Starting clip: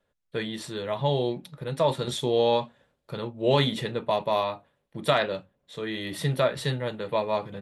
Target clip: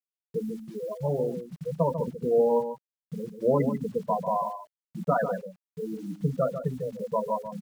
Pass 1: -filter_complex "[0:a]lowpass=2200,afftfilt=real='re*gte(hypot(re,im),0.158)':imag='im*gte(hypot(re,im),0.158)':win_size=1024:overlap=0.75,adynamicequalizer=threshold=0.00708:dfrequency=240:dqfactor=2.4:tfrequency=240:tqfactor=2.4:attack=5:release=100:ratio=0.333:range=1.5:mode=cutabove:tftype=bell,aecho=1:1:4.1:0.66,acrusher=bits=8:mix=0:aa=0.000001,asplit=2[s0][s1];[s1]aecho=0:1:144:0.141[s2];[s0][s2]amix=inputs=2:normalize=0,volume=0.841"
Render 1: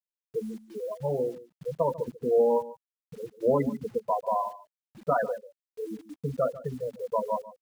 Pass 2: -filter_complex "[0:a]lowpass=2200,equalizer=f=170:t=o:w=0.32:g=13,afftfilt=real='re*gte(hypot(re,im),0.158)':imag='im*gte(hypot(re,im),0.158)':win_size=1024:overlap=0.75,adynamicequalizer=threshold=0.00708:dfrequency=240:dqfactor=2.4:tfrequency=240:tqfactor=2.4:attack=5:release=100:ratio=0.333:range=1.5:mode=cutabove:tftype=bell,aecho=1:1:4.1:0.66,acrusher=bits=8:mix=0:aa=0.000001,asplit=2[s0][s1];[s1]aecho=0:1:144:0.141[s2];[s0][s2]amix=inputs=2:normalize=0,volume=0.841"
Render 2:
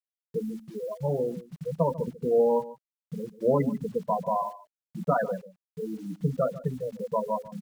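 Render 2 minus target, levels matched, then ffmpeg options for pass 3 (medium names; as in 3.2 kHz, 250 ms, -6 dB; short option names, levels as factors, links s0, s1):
echo-to-direct -7.5 dB
-filter_complex "[0:a]lowpass=2200,equalizer=f=170:t=o:w=0.32:g=13,afftfilt=real='re*gte(hypot(re,im),0.158)':imag='im*gte(hypot(re,im),0.158)':win_size=1024:overlap=0.75,adynamicequalizer=threshold=0.00708:dfrequency=240:dqfactor=2.4:tfrequency=240:tqfactor=2.4:attack=5:release=100:ratio=0.333:range=1.5:mode=cutabove:tftype=bell,aecho=1:1:4.1:0.66,acrusher=bits=8:mix=0:aa=0.000001,asplit=2[s0][s1];[s1]aecho=0:1:144:0.335[s2];[s0][s2]amix=inputs=2:normalize=0,volume=0.841"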